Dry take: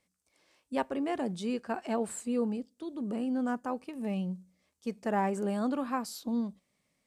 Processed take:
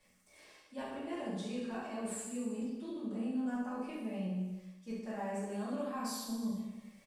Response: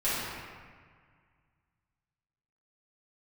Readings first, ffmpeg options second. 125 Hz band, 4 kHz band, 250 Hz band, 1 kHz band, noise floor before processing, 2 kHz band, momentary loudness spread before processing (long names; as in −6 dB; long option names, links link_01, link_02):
−3.5 dB, −2.5 dB, −5.0 dB, −9.0 dB, −80 dBFS, −6.5 dB, 7 LU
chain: -filter_complex "[0:a]acrossover=split=170|3000[link_01][link_02][link_03];[link_02]acompressor=threshold=-32dB:ratio=6[link_04];[link_01][link_04][link_03]amix=inputs=3:normalize=0,bandreject=frequency=60:width_type=h:width=6,bandreject=frequency=120:width_type=h:width=6,bandreject=frequency=180:width_type=h:width=6,areverse,acompressor=threshold=-49dB:ratio=6,areverse,aecho=1:1:70|147|231.7|324.9|427.4:0.631|0.398|0.251|0.158|0.1[link_05];[1:a]atrim=start_sample=2205,atrim=end_sample=3087[link_06];[link_05][link_06]afir=irnorm=-1:irlink=0,volume=3dB"